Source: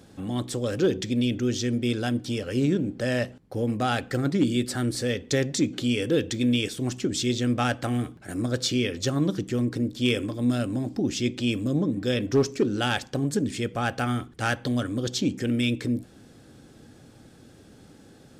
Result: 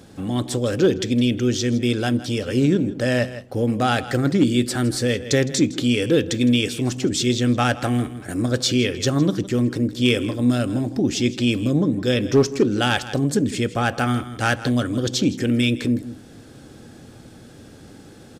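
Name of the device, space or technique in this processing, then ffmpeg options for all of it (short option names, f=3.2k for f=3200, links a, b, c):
ducked delay: -filter_complex "[0:a]asplit=3[a][b][c];[b]adelay=161,volume=-3dB[d];[c]apad=whole_len=818239[e];[d][e]sidechaincompress=threshold=-37dB:ratio=12:attack=48:release=418[f];[a][f]amix=inputs=2:normalize=0,volume=5.5dB"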